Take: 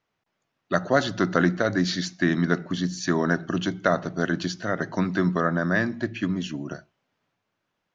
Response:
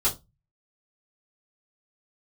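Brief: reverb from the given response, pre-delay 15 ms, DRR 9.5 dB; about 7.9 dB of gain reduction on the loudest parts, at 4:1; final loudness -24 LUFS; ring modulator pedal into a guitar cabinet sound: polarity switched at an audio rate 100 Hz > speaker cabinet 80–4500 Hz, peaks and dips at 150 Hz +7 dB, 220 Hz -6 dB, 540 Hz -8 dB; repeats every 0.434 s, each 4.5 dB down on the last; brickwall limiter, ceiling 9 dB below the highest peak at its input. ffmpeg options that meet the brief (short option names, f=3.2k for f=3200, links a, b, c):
-filter_complex "[0:a]acompressor=threshold=-25dB:ratio=4,alimiter=limit=-19.5dB:level=0:latency=1,aecho=1:1:434|868|1302|1736|2170|2604|3038|3472|3906:0.596|0.357|0.214|0.129|0.0772|0.0463|0.0278|0.0167|0.01,asplit=2[a][b];[1:a]atrim=start_sample=2205,adelay=15[c];[b][c]afir=irnorm=-1:irlink=0,volume=-19.5dB[d];[a][d]amix=inputs=2:normalize=0,aeval=exprs='val(0)*sgn(sin(2*PI*100*n/s))':c=same,highpass=80,equalizer=f=150:t=q:w=4:g=7,equalizer=f=220:t=q:w=4:g=-6,equalizer=f=540:t=q:w=4:g=-8,lowpass=f=4.5k:w=0.5412,lowpass=f=4.5k:w=1.3066,volume=7.5dB"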